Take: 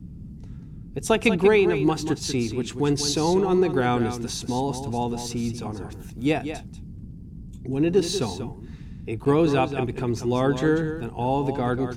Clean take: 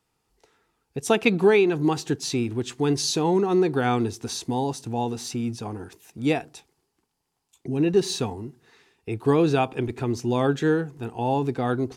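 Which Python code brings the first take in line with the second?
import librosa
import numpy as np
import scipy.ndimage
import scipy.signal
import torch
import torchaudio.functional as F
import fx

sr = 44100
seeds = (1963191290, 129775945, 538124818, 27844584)

y = fx.fix_interpolate(x, sr, at_s=(9.25,), length_ms=8.0)
y = fx.noise_reduce(y, sr, print_start_s=7.11, print_end_s=7.61, reduce_db=30.0)
y = fx.fix_echo_inverse(y, sr, delay_ms=189, level_db=-9.5)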